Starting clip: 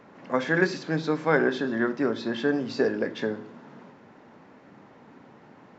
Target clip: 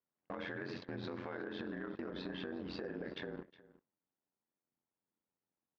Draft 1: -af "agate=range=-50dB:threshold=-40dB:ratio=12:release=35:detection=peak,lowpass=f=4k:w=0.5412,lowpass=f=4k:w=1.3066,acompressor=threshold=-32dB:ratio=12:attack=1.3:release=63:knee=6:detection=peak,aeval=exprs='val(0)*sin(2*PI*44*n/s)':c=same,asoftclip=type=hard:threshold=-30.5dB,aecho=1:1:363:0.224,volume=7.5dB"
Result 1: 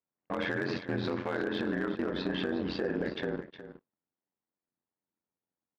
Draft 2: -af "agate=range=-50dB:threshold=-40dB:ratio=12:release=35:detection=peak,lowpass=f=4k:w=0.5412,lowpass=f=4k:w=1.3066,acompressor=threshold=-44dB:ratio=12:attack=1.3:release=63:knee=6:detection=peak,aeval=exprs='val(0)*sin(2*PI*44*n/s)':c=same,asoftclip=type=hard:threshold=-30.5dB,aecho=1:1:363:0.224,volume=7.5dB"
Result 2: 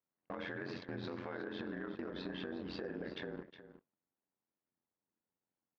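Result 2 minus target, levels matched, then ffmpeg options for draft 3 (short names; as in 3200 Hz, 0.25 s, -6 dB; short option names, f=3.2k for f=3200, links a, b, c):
echo-to-direct +6.5 dB
-af "agate=range=-50dB:threshold=-40dB:ratio=12:release=35:detection=peak,lowpass=f=4k:w=0.5412,lowpass=f=4k:w=1.3066,acompressor=threshold=-44dB:ratio=12:attack=1.3:release=63:knee=6:detection=peak,aeval=exprs='val(0)*sin(2*PI*44*n/s)':c=same,asoftclip=type=hard:threshold=-30.5dB,aecho=1:1:363:0.106,volume=7.5dB"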